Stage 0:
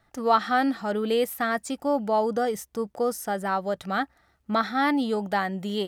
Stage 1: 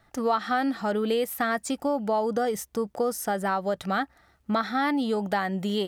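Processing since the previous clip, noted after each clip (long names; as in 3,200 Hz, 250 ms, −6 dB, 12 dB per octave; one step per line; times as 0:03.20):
downward compressor 3 to 1, threshold −27 dBFS, peak gain reduction 9.5 dB
level +3.5 dB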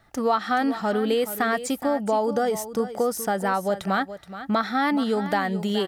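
single-tap delay 424 ms −12.5 dB
level +2.5 dB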